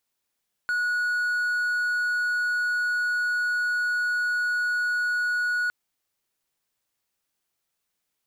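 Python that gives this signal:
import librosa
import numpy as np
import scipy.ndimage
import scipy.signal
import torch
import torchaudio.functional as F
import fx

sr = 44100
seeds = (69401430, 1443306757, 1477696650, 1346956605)

y = 10.0 ** (-20.5 / 20.0) * (1.0 - 4.0 * np.abs(np.mod(1460.0 * (np.arange(round(5.01 * sr)) / sr) + 0.25, 1.0) - 0.5))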